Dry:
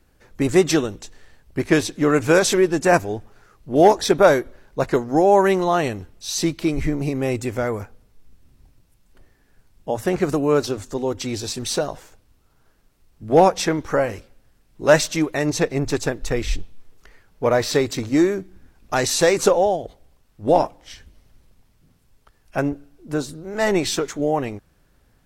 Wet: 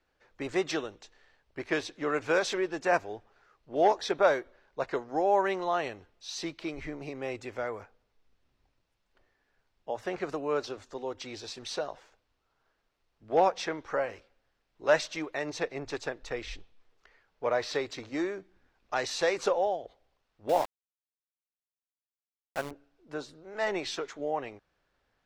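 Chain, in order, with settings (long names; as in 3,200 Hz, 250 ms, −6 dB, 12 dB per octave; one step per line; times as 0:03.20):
three-way crossover with the lows and the highs turned down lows −13 dB, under 410 Hz, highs −22 dB, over 5,600 Hz
0:20.49–0:22.71: centre clipping without the shift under −25.5 dBFS
level −8.5 dB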